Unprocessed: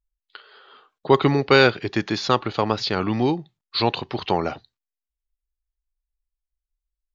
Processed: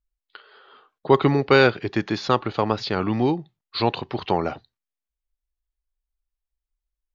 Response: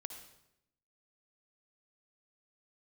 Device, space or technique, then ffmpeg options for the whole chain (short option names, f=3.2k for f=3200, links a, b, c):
behind a face mask: -af "highshelf=f=3.4k:g=-7.5"